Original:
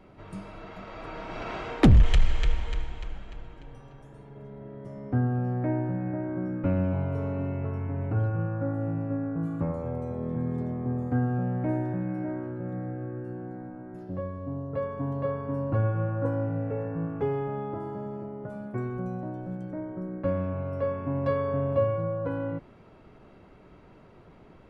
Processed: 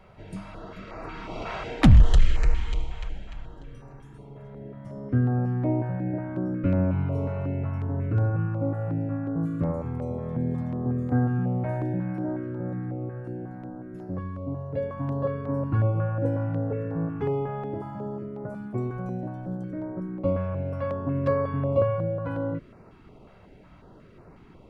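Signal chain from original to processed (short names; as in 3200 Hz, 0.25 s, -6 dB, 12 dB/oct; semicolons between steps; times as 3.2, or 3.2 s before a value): stepped notch 5.5 Hz 290–3300 Hz; gain +3 dB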